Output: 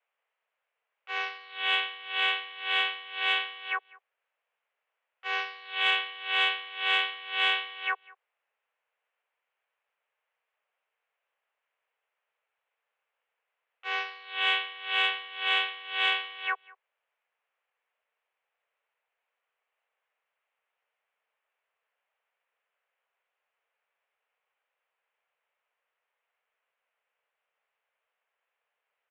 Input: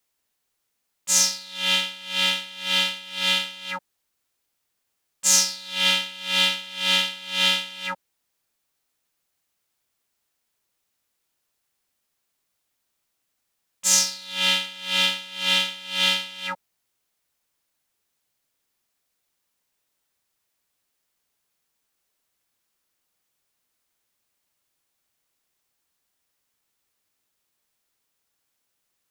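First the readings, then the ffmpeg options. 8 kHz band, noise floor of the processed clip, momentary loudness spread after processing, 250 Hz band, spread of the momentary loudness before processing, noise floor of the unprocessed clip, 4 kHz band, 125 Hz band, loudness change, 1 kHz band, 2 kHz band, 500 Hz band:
under -35 dB, under -85 dBFS, 8 LU, under -15 dB, 13 LU, -77 dBFS, -8.5 dB, n/a, -7.0 dB, +0.5 dB, -1.0 dB, -6.0 dB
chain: -filter_complex "[0:a]highpass=f=240:t=q:w=0.5412,highpass=f=240:t=q:w=1.307,lowpass=f=2.6k:t=q:w=0.5176,lowpass=f=2.6k:t=q:w=0.7071,lowpass=f=2.6k:t=q:w=1.932,afreqshift=210,asplit=2[a][b];[b]adelay=198.3,volume=-23dB,highshelf=f=4k:g=-4.46[c];[a][c]amix=inputs=2:normalize=0,acontrast=58,volume=-5dB"

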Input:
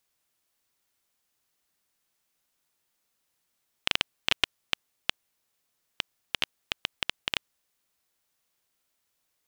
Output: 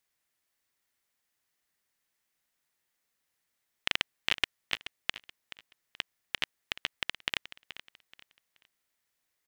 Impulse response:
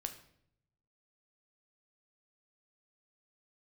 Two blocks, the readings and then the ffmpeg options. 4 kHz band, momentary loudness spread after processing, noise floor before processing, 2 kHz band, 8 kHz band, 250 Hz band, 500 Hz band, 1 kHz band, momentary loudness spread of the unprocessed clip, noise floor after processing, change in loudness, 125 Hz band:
-3.5 dB, 18 LU, -78 dBFS, -1.0 dB, -4.0 dB, -4.0 dB, -4.0 dB, -3.5 dB, 6 LU, -82 dBFS, -2.5 dB, -4.0 dB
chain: -af "equalizer=f=1.9k:w=2.9:g=6.5,aecho=1:1:428|856|1284:0.2|0.0619|0.0192,volume=-4.5dB"

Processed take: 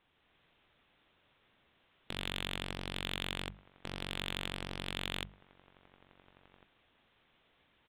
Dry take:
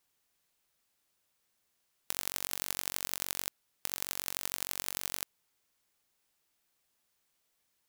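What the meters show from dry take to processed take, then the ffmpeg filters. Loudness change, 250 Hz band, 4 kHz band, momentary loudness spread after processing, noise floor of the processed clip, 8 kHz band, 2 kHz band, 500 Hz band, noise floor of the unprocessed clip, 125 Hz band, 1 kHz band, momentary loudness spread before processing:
-4.5 dB, +8.5 dB, +2.0 dB, 8 LU, -73 dBFS, -17.5 dB, +2.5 dB, +4.5 dB, -78 dBFS, +12.0 dB, +1.0 dB, 5 LU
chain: -filter_complex "[0:a]lowshelf=f=320:g=5.5,bandreject=f=50:t=h:w=6,bandreject=f=100:t=h:w=6,bandreject=f=150:t=h:w=6,bandreject=f=200:t=h:w=6,asplit=2[a][b];[b]adelay=1399,volume=-30dB,highshelf=f=4k:g=-31.5[c];[a][c]amix=inputs=2:normalize=0,aresample=8000,volume=31.5dB,asoftclip=hard,volume=-31.5dB,aresample=44100,dynaudnorm=f=150:g=3:m=4dB,asplit=2[d][e];[e]aeval=exprs='0.0133*(abs(mod(val(0)/0.0133+3,4)-2)-1)':c=same,volume=-3dB[f];[d][f]amix=inputs=2:normalize=0,volume=4.5dB"

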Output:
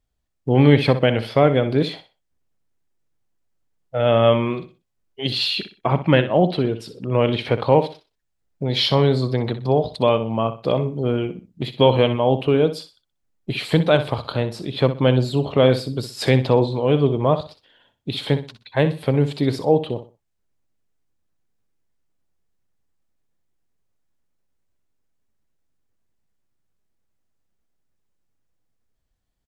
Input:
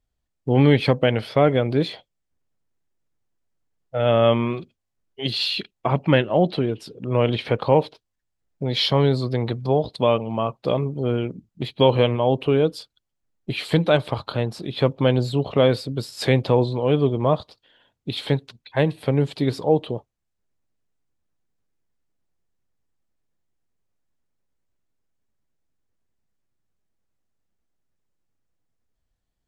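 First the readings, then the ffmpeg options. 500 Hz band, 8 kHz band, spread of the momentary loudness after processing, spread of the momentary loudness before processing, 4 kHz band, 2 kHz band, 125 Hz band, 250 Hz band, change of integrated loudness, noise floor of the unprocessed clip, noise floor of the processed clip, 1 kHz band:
+2.0 dB, n/a, 12 LU, 12 LU, +2.0 dB, +2.0 dB, +2.0 dB, +2.0 dB, +2.0 dB, -78 dBFS, -74 dBFS, +2.0 dB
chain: -af "aecho=1:1:62|124|186:0.251|0.0678|0.0183,volume=1.5dB"

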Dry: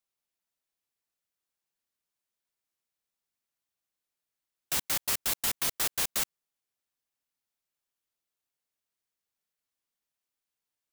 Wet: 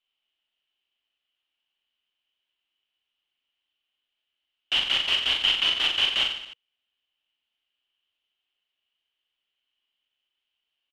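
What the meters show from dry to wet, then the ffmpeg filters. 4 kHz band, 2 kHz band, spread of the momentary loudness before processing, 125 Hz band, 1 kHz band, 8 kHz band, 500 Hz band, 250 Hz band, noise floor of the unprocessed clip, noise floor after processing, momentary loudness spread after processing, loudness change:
+16.0 dB, +10.5 dB, 4 LU, n/a, +3.5 dB, -13.5 dB, +1.5 dB, -0.5 dB, under -85 dBFS, -84 dBFS, 5 LU, +6.5 dB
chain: -filter_complex "[0:a]lowpass=f=3k:t=q:w=13,equalizer=f=140:w=2.5:g=-14.5,bandreject=f=480:w=12,asplit=2[a][b];[b]aecho=0:1:40|88|145.6|214.7|297.7:0.631|0.398|0.251|0.158|0.1[c];[a][c]amix=inputs=2:normalize=0"

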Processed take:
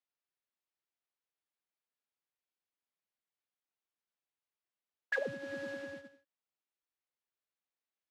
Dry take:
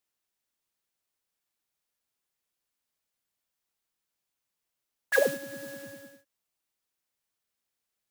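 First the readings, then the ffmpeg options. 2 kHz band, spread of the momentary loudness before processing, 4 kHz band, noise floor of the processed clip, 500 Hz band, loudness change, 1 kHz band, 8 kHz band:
-7.0 dB, 18 LU, -10.0 dB, under -85 dBFS, -10.0 dB, -10.5 dB, -9.0 dB, -20.5 dB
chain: -filter_complex "[0:a]agate=range=-9dB:threshold=-47dB:ratio=16:detection=peak,acrossover=split=180[a][b];[a]afreqshift=-23[c];[b]acompressor=threshold=-32dB:ratio=10[d];[c][d]amix=inputs=2:normalize=0,highpass=130,lowpass=3.5k,volume=1dB"

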